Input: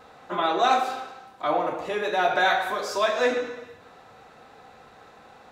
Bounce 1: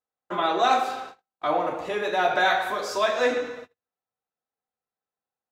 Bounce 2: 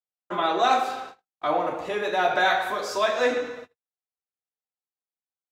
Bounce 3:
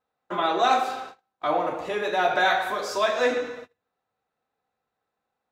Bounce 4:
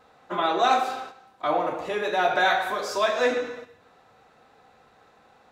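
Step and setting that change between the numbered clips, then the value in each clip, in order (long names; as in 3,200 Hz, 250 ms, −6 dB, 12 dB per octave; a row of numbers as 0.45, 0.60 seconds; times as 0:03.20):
noise gate, range: −45, −59, −32, −7 decibels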